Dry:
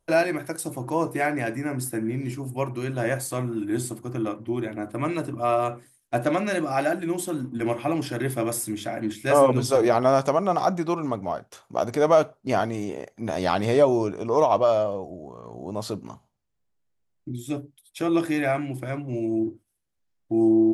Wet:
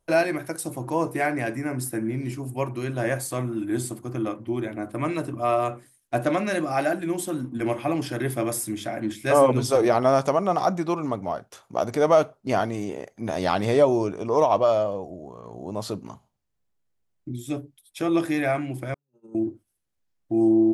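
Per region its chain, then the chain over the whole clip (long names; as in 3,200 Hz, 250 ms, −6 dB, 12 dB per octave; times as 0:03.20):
0:18.94–0:19.35: noise gate −24 dBFS, range −43 dB + phaser with its sweep stopped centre 450 Hz, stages 8 + notch comb filter 1,100 Hz
whole clip: no processing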